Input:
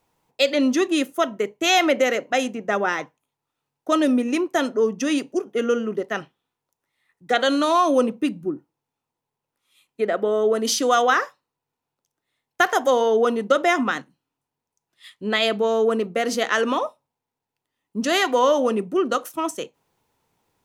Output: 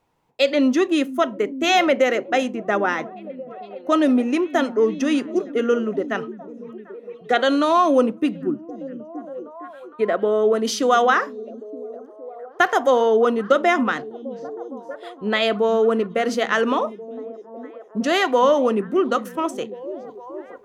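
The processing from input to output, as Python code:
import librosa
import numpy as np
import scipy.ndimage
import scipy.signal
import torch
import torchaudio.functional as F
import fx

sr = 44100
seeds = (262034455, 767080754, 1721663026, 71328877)

p1 = fx.high_shelf(x, sr, hz=4700.0, db=-10.5)
p2 = p1 + fx.echo_stepped(p1, sr, ms=461, hz=180.0, octaves=0.7, feedback_pct=70, wet_db=-10.5, dry=0)
y = p2 * librosa.db_to_amplitude(2.0)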